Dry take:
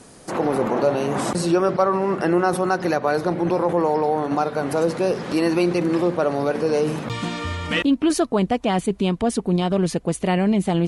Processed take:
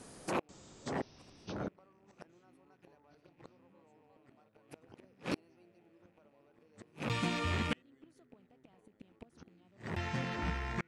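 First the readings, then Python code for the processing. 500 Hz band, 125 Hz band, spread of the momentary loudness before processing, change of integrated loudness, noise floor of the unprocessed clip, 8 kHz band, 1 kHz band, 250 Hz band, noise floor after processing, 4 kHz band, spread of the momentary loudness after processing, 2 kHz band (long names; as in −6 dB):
−26.0 dB, −16.5 dB, 4 LU, −17.0 dB, −44 dBFS, −20.5 dB, −21.0 dB, −23.0 dB, −70 dBFS, −14.5 dB, 23 LU, −14.5 dB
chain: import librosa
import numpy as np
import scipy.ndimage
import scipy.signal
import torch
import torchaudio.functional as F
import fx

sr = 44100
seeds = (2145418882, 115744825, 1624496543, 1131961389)

y = fx.rattle_buzz(x, sr, strikes_db=-33.0, level_db=-23.0)
y = fx.gate_flip(y, sr, shuts_db=-14.0, range_db=-40)
y = fx.echo_pitch(y, sr, ms=490, semitones=-5, count=2, db_per_echo=-3.0)
y = y * 10.0 ** (-7.5 / 20.0)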